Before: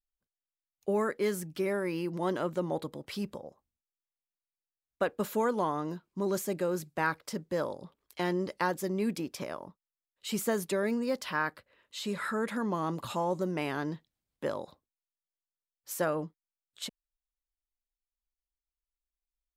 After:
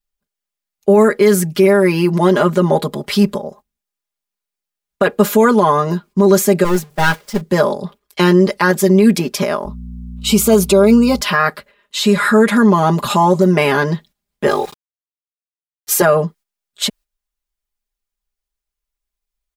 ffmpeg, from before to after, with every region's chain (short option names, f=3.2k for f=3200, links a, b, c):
-filter_complex "[0:a]asettb=1/sr,asplit=3[a][b][c];[a]atrim=end=6.644[d];[b]atrim=start=6.64:end=7.41,asetpts=PTS-STARTPTS,afade=t=in:d=0.004:c=qsin,afade=t=out:st=0.766:d=0.004:c=qsin,aeval=exprs='val(0)+0.5*0.0168*sgn(val(0))':c=same,agate=range=-33dB:threshold=-28dB:ratio=3:release=100:detection=peak,aeval=exprs='(tanh(20*val(0)+0.65)-tanh(0.65))/20':c=same[e];[c]atrim=start=7.406[f];[d][e]acrossfade=d=0.004:c1=hsin:c2=qsin[g];[g][f]acrossfade=d=0.004:c1=qsin:c2=hsin,asettb=1/sr,asplit=3[h][i][j];[h]atrim=end=9.654[k];[i]atrim=start=9.65:end=11.21,asetpts=PTS-STARTPTS,afade=t=in:d=0.004:c=qsin,afade=t=out:st=1.556:d=0.004:c=qsin,asuperstop=centerf=1800:order=4:qfactor=2.7,aeval=exprs='val(0)+0.00447*(sin(2*PI*60*n/s)+sin(2*PI*2*60*n/s)/2+sin(2*PI*3*60*n/s)/3+sin(2*PI*4*60*n/s)/4+sin(2*PI*5*60*n/s)/5)':c=same[l];[j]atrim=start=11.206[m];[k][l]acrossfade=d=0.004:c1=hsin:c2=qsin[n];[n][m]acrossfade=d=0.004:c1=qsin:c2=hsin,asettb=1/sr,asplit=3[o][p][q];[o]atrim=end=14.474[r];[p]atrim=start=14.47:end=16.02,asetpts=PTS-STARTPTS,afade=t=in:d=0.004:c=qsin,afade=t=out:st=1.546:d=0.004:c=qsin,aecho=1:1:2.5:0.92,atrim=end_sample=68355,aeval=exprs='val(0)*gte(abs(val(0)),0.00266)':c=same[s];[q]atrim=start=16.016[t];[r][s]acrossfade=d=0.004:c1=hsin:c2=qsin[u];[u][t]acrossfade=d=0.004:c1=qsin:c2=hsin,agate=range=-11dB:threshold=-58dB:ratio=16:detection=peak,aecho=1:1:4.9:0.91,alimiter=level_in=19dB:limit=-1dB:release=50:level=0:latency=1,volume=-1.5dB"